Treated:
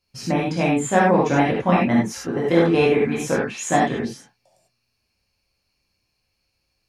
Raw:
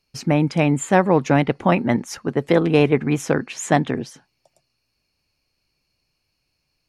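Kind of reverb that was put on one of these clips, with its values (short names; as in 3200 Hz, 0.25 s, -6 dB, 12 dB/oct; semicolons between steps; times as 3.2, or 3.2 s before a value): non-linear reverb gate 0.12 s flat, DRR -6 dB; gain -6.5 dB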